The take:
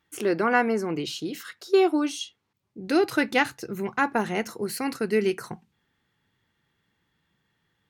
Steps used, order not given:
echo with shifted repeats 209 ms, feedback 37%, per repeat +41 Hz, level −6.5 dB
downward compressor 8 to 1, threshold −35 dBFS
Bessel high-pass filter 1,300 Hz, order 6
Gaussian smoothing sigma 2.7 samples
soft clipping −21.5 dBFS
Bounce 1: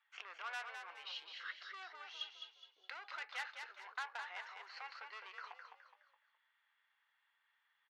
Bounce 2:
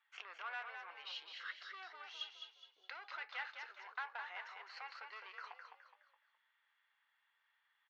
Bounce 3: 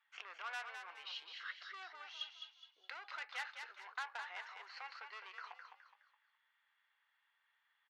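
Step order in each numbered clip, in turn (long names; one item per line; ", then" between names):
Gaussian smoothing, then soft clipping, then downward compressor, then echo with shifted repeats, then Bessel high-pass filter
soft clipping, then Gaussian smoothing, then downward compressor, then echo with shifted repeats, then Bessel high-pass filter
Gaussian smoothing, then soft clipping, then downward compressor, then Bessel high-pass filter, then echo with shifted repeats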